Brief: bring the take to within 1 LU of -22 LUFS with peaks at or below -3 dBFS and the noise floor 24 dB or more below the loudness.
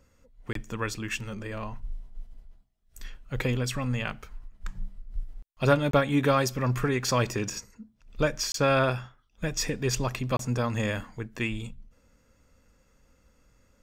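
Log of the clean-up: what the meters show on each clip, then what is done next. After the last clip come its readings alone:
dropouts 4; longest dropout 23 ms; loudness -28.5 LUFS; peak level -8.5 dBFS; loudness target -22.0 LUFS
-> interpolate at 0.53/5.91/8.52/10.37 s, 23 ms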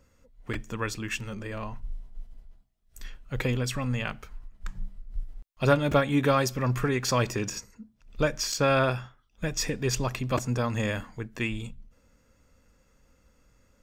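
dropouts 0; loudness -28.5 LUFS; peak level -8.5 dBFS; loudness target -22.0 LUFS
-> trim +6.5 dB; peak limiter -3 dBFS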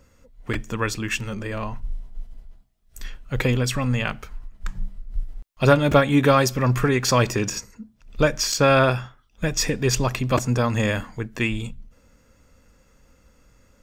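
loudness -22.0 LUFS; peak level -3.0 dBFS; noise floor -59 dBFS

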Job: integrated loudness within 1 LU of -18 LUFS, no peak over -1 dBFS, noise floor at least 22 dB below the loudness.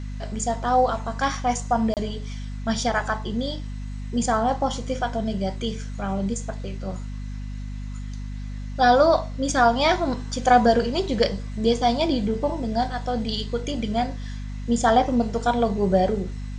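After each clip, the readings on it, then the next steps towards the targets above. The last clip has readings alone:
dropouts 1; longest dropout 28 ms; hum 50 Hz; highest harmonic 250 Hz; hum level -29 dBFS; loudness -23.5 LUFS; peak level -4.0 dBFS; loudness target -18.0 LUFS
-> interpolate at 1.94 s, 28 ms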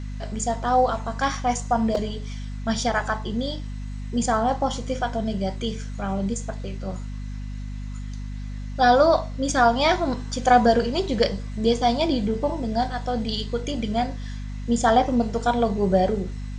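dropouts 0; hum 50 Hz; highest harmonic 250 Hz; hum level -29 dBFS
-> de-hum 50 Hz, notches 5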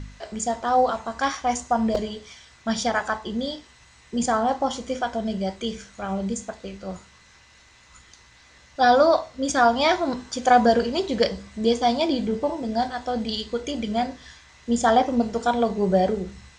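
hum not found; loudness -23.5 LUFS; peak level -4.5 dBFS; loudness target -18.0 LUFS
-> trim +5.5 dB; peak limiter -1 dBFS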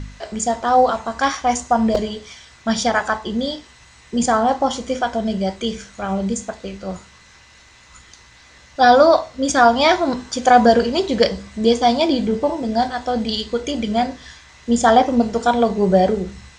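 loudness -18.0 LUFS; peak level -1.0 dBFS; noise floor -48 dBFS

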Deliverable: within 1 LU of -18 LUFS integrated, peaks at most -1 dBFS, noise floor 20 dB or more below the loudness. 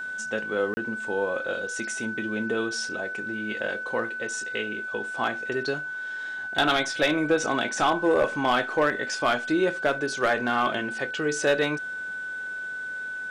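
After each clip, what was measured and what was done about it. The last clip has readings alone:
dropouts 1; longest dropout 30 ms; steady tone 1.5 kHz; tone level -31 dBFS; loudness -26.5 LUFS; peak level -13.0 dBFS; loudness target -18.0 LUFS
-> interpolate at 0.74 s, 30 ms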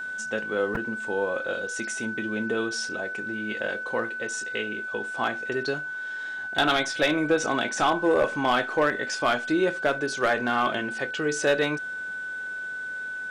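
dropouts 0; steady tone 1.5 kHz; tone level -31 dBFS
-> band-stop 1.5 kHz, Q 30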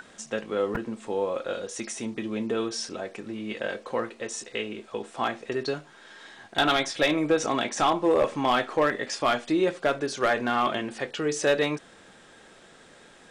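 steady tone not found; loudness -27.5 LUFS; peak level -13.5 dBFS; loudness target -18.0 LUFS
-> trim +9.5 dB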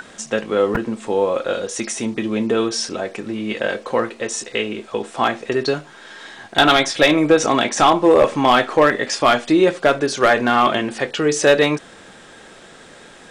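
loudness -18.0 LUFS; peak level -4.0 dBFS; noise floor -43 dBFS

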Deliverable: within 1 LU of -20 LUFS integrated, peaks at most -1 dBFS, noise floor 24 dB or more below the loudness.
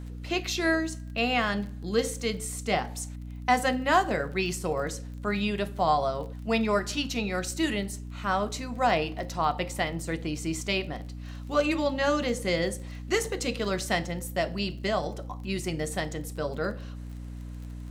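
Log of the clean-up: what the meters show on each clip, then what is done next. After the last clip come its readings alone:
tick rate 23 per s; hum 60 Hz; highest harmonic 300 Hz; hum level -36 dBFS; loudness -29.0 LUFS; peak level -9.0 dBFS; loudness target -20.0 LUFS
-> de-click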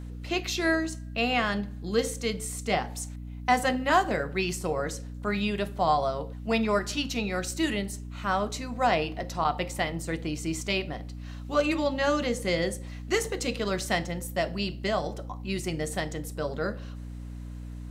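tick rate 0 per s; hum 60 Hz; highest harmonic 300 Hz; hum level -36 dBFS
-> hum notches 60/120/180/240/300 Hz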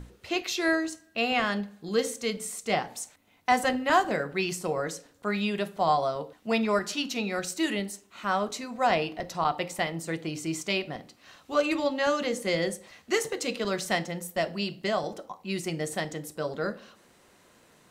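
hum not found; loudness -29.0 LUFS; peak level -9.0 dBFS; loudness target -20.0 LUFS
-> trim +9 dB; peak limiter -1 dBFS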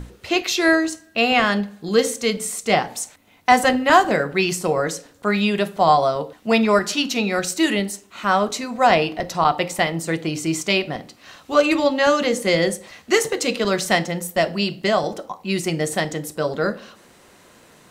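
loudness -20.0 LUFS; peak level -1.0 dBFS; noise floor -52 dBFS

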